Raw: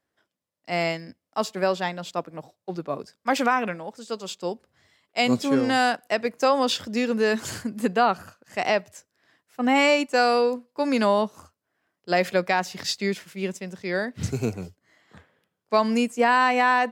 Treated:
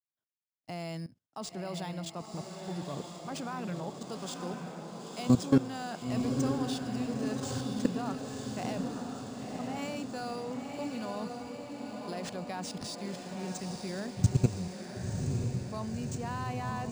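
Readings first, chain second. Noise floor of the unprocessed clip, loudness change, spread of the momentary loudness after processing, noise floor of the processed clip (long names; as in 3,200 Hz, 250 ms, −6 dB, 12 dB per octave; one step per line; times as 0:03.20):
−84 dBFS, −11.0 dB, 11 LU, −75 dBFS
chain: noise gate with hold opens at −48 dBFS
octave-band graphic EQ 125/500/2,000/8,000 Hz +9/−4/−9/+6 dB
output level in coarse steps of 19 dB
on a send: feedback delay with all-pass diffusion 980 ms, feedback 63%, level −4 dB
on the sum: linearly interpolated sample-rate reduction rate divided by 3×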